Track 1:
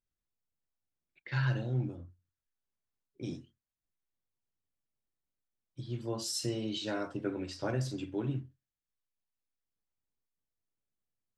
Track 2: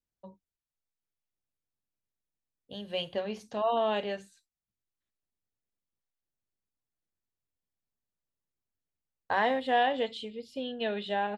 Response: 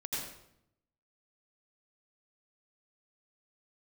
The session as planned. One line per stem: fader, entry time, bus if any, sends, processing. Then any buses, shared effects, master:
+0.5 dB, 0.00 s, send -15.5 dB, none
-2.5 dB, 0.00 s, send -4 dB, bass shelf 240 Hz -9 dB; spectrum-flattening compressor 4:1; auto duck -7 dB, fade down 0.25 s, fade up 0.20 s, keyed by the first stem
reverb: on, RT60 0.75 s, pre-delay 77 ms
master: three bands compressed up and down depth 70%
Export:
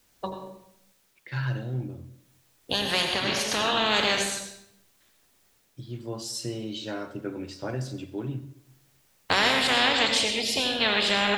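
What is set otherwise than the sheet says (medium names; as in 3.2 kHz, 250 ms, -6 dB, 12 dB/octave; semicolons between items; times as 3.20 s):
stem 2 -2.5 dB -> +5.0 dB; master: missing three bands compressed up and down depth 70%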